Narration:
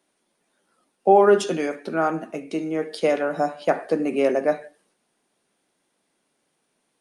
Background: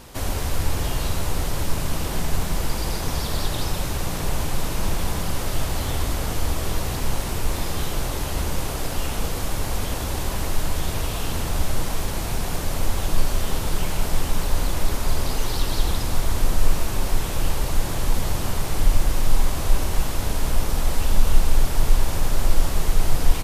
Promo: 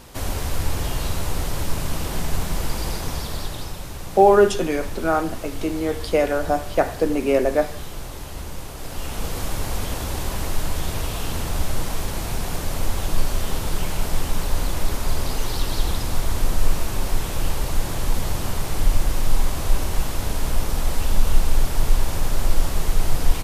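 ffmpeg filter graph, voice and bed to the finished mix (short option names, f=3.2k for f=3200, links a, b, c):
-filter_complex "[0:a]adelay=3100,volume=1.5dB[a];[1:a]volume=7dB,afade=t=out:st=2.86:d=0.92:silence=0.421697,afade=t=in:st=8.75:d=0.65:silence=0.421697[b];[a][b]amix=inputs=2:normalize=0"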